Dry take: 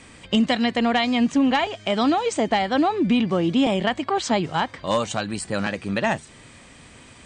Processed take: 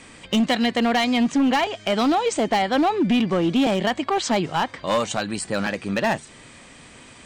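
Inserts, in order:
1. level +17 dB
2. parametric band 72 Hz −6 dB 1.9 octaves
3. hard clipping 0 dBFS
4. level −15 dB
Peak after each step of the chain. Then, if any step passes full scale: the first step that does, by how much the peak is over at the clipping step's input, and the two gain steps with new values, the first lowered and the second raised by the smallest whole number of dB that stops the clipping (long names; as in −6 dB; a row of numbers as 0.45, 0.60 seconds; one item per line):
+8.0, +8.0, 0.0, −15.0 dBFS
step 1, 8.0 dB
step 1 +9 dB, step 4 −7 dB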